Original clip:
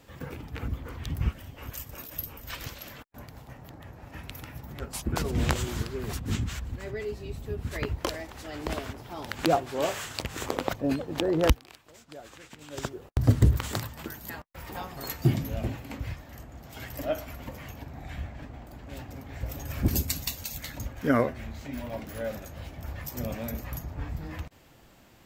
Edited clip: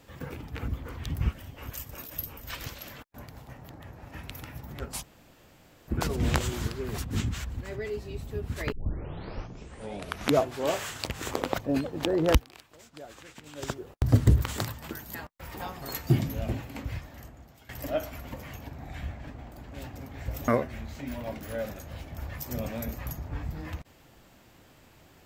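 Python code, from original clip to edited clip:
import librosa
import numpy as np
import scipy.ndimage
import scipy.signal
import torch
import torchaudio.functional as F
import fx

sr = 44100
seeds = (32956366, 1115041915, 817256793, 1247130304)

y = fx.edit(x, sr, fx.insert_room_tone(at_s=5.03, length_s=0.85),
    fx.tape_start(start_s=7.87, length_s=1.81),
    fx.fade_out_to(start_s=16.29, length_s=0.55, floor_db=-19.5),
    fx.cut(start_s=19.63, length_s=1.51), tone=tone)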